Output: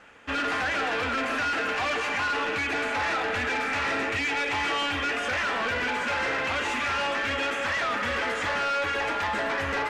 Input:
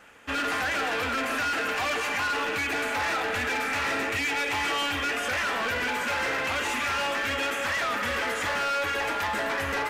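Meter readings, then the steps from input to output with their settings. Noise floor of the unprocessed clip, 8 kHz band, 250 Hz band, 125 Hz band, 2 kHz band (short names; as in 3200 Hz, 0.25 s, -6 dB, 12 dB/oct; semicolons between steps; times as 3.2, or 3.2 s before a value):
-30 dBFS, -4.5 dB, +1.0 dB, +1.0 dB, +0.5 dB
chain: air absorption 68 m; gain +1 dB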